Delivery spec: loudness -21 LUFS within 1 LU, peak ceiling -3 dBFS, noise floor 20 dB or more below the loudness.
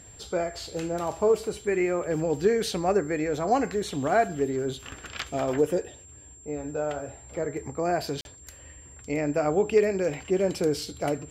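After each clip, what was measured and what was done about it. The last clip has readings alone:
dropouts 1; longest dropout 41 ms; steady tone 7.4 kHz; tone level -48 dBFS; loudness -27.5 LUFS; peak level -10.5 dBFS; loudness target -21.0 LUFS
-> interpolate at 8.21 s, 41 ms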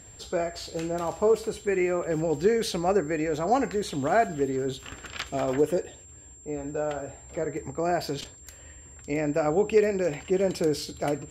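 dropouts 0; steady tone 7.4 kHz; tone level -48 dBFS
-> band-stop 7.4 kHz, Q 30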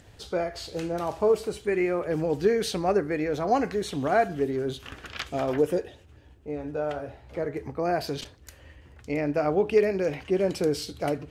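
steady tone not found; loudness -27.5 LUFS; peak level -10.5 dBFS; loudness target -21.0 LUFS
-> trim +6.5 dB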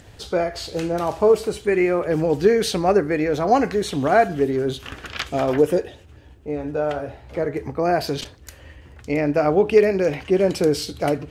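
loudness -21.0 LUFS; peak level -4.0 dBFS; noise floor -47 dBFS

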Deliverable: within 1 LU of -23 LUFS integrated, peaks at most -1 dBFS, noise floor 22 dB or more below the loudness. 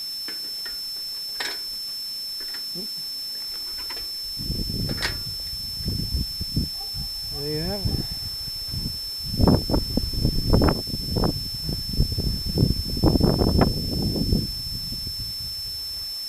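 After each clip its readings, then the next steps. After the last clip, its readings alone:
steady tone 5.3 kHz; tone level -29 dBFS; noise floor -32 dBFS; noise floor target -48 dBFS; loudness -25.5 LUFS; peak level -4.5 dBFS; loudness target -23.0 LUFS
-> band-stop 5.3 kHz, Q 30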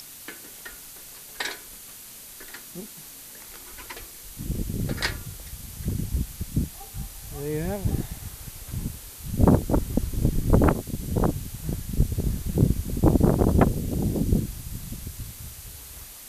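steady tone not found; noise floor -44 dBFS; noise floor target -49 dBFS
-> noise reduction 6 dB, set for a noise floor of -44 dBFS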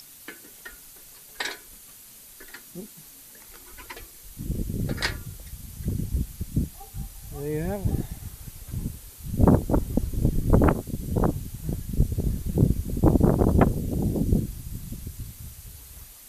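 noise floor -48 dBFS; noise floor target -49 dBFS
-> noise reduction 6 dB, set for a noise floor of -48 dBFS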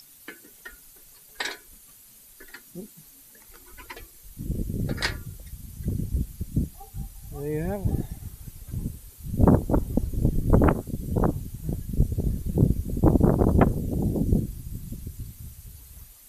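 noise floor -52 dBFS; loudness -26.0 LUFS; peak level -5.0 dBFS; loudness target -23.0 LUFS
-> trim +3 dB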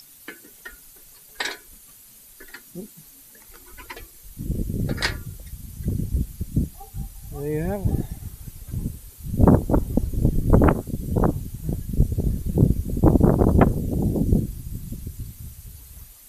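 loudness -23.0 LUFS; peak level -2.0 dBFS; noise floor -49 dBFS

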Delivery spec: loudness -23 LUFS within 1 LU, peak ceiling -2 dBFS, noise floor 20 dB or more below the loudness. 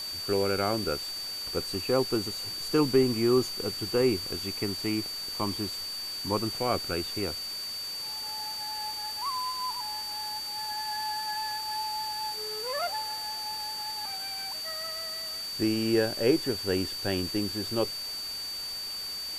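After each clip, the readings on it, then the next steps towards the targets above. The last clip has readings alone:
steady tone 4.6 kHz; tone level -34 dBFS; noise floor -36 dBFS; noise floor target -50 dBFS; loudness -30.0 LUFS; peak level -10.5 dBFS; loudness target -23.0 LUFS
-> band-stop 4.6 kHz, Q 30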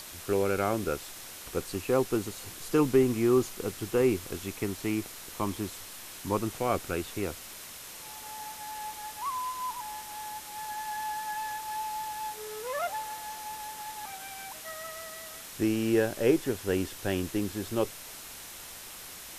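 steady tone not found; noise floor -45 dBFS; noise floor target -52 dBFS
-> noise reduction 7 dB, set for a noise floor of -45 dBFS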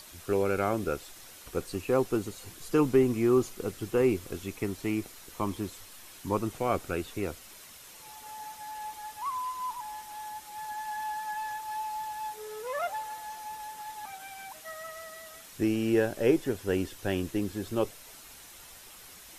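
noise floor -50 dBFS; noise floor target -52 dBFS
-> noise reduction 6 dB, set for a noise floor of -50 dBFS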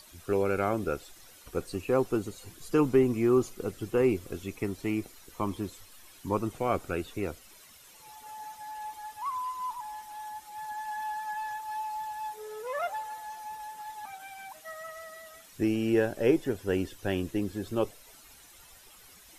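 noise floor -54 dBFS; loudness -31.5 LUFS; peak level -11.5 dBFS; loudness target -23.0 LUFS
-> trim +8.5 dB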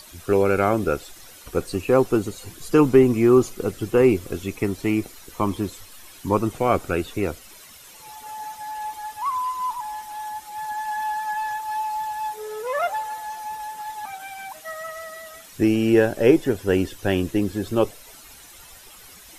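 loudness -23.0 LUFS; peak level -3.0 dBFS; noise floor -46 dBFS

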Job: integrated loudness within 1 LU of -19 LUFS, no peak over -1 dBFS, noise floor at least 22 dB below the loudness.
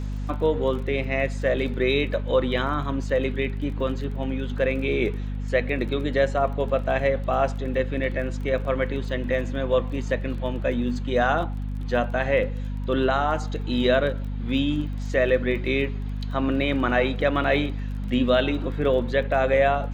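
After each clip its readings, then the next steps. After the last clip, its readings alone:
tick rate 21 per s; hum 50 Hz; highest harmonic 250 Hz; hum level -27 dBFS; loudness -24.5 LUFS; peak level -8.0 dBFS; loudness target -19.0 LUFS
-> de-click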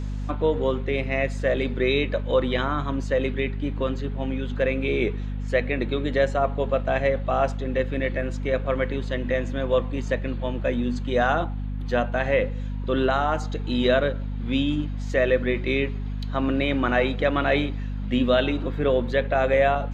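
tick rate 0 per s; hum 50 Hz; highest harmonic 250 Hz; hum level -27 dBFS
-> hum notches 50/100/150/200/250 Hz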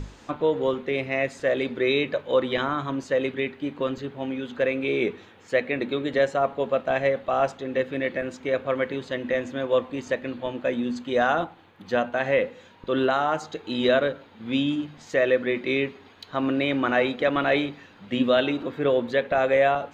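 hum not found; loudness -25.5 LUFS; peak level -9.0 dBFS; loudness target -19.0 LUFS
-> trim +6.5 dB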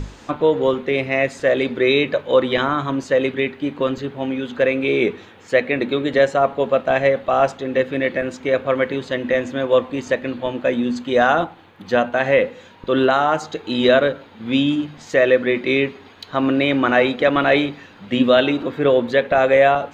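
loudness -19.0 LUFS; peak level -2.5 dBFS; noise floor -45 dBFS

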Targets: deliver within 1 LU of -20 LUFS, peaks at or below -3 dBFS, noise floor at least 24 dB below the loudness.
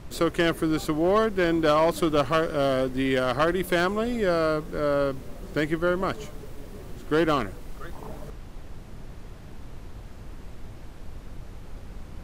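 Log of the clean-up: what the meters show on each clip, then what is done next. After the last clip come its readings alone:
clipped samples 0.4%; clipping level -14.5 dBFS; noise floor -42 dBFS; noise floor target -49 dBFS; loudness -24.5 LUFS; peak level -14.5 dBFS; loudness target -20.0 LUFS
-> clip repair -14.5 dBFS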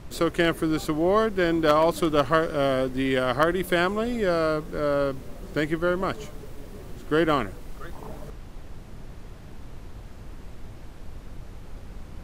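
clipped samples 0.0%; noise floor -42 dBFS; noise floor target -48 dBFS
-> noise print and reduce 6 dB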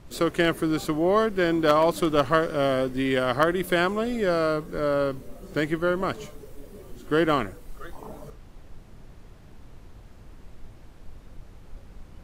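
noise floor -48 dBFS; loudness -24.0 LUFS; peak level -5.5 dBFS; loudness target -20.0 LUFS
-> trim +4 dB; peak limiter -3 dBFS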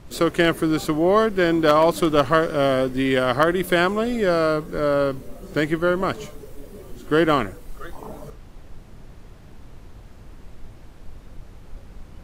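loudness -20.0 LUFS; peak level -3.0 dBFS; noise floor -44 dBFS

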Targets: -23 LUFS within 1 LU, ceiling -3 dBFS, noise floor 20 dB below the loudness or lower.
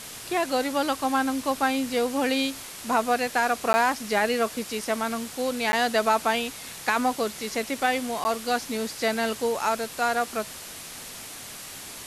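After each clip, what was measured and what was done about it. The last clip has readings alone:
dropouts 3; longest dropout 10 ms; noise floor -40 dBFS; noise floor target -46 dBFS; loudness -26.0 LUFS; peak level -10.0 dBFS; loudness target -23.0 LUFS
-> interpolate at 3.73/5.72/8.24 s, 10 ms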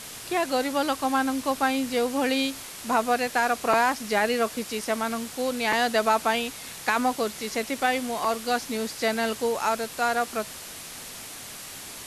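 dropouts 0; noise floor -40 dBFS; noise floor target -46 dBFS
-> noise reduction 6 dB, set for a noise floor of -40 dBFS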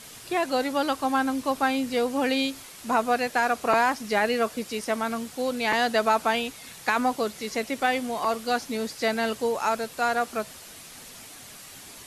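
noise floor -45 dBFS; noise floor target -46 dBFS
-> noise reduction 6 dB, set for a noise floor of -45 dBFS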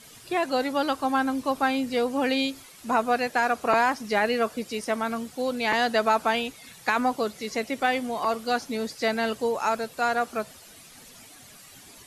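noise floor -49 dBFS; loudness -26.0 LUFS; peak level -9.5 dBFS; loudness target -23.0 LUFS
-> trim +3 dB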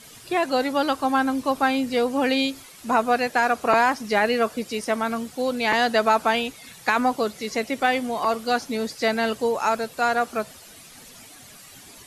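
loudness -23.0 LUFS; peak level -6.5 dBFS; noise floor -46 dBFS

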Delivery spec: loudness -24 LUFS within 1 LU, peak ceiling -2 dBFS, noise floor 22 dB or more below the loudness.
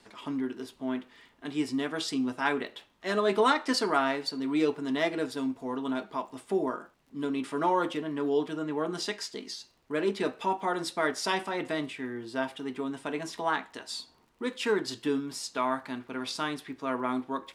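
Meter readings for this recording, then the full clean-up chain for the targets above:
tick rate 29 per s; loudness -31.0 LUFS; peak level -11.0 dBFS; loudness target -24.0 LUFS
-> de-click; trim +7 dB

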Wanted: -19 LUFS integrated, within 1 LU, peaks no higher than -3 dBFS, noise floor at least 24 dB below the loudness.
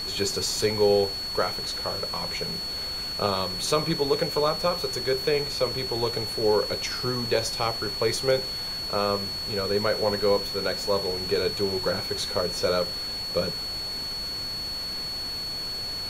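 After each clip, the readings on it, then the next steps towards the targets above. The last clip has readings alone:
steady tone 4.4 kHz; tone level -30 dBFS; noise floor -32 dBFS; noise floor target -50 dBFS; loudness -26.0 LUFS; peak level -9.0 dBFS; loudness target -19.0 LUFS
-> band-stop 4.4 kHz, Q 30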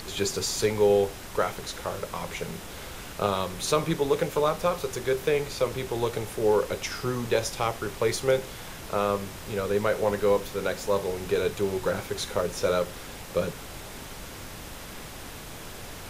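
steady tone not found; noise floor -41 dBFS; noise floor target -52 dBFS
-> noise print and reduce 11 dB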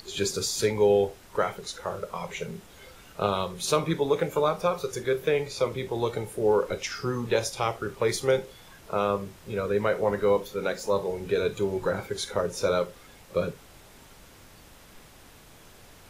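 noise floor -52 dBFS; loudness -28.0 LUFS; peak level -9.5 dBFS; loudness target -19.0 LUFS
-> trim +9 dB; peak limiter -3 dBFS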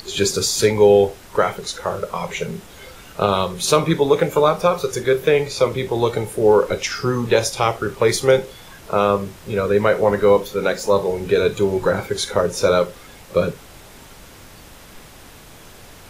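loudness -19.0 LUFS; peak level -3.0 dBFS; noise floor -43 dBFS

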